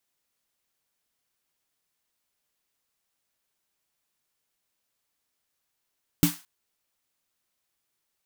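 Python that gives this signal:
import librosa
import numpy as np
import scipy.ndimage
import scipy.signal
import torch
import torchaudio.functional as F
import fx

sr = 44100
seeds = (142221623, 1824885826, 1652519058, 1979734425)

y = fx.drum_snare(sr, seeds[0], length_s=0.22, hz=170.0, second_hz=290.0, noise_db=-8.0, noise_from_hz=800.0, decay_s=0.17, noise_decay_s=0.34)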